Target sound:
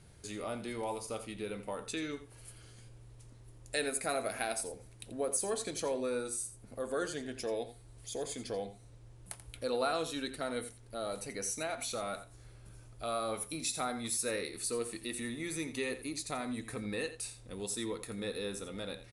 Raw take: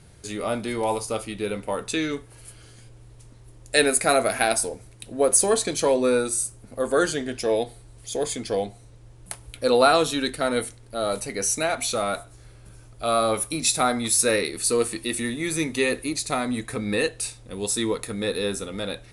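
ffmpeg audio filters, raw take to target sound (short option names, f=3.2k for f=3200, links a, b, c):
-af "acompressor=threshold=-36dB:ratio=1.5,aecho=1:1:85:0.224,volume=-7.5dB"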